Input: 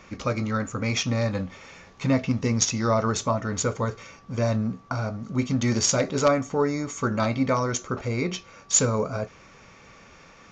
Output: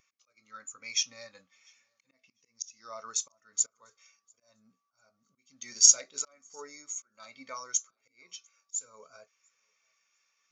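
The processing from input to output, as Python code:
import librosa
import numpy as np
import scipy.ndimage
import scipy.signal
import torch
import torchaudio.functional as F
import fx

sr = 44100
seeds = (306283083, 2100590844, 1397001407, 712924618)

p1 = fx.auto_swell(x, sr, attack_ms=383.0)
p2 = np.diff(p1, prepend=0.0)
p3 = p2 + fx.echo_feedback(p2, sr, ms=697, feedback_pct=30, wet_db=-23.5, dry=0)
p4 = fx.spectral_expand(p3, sr, expansion=1.5)
y = p4 * 10.0 ** (7.0 / 20.0)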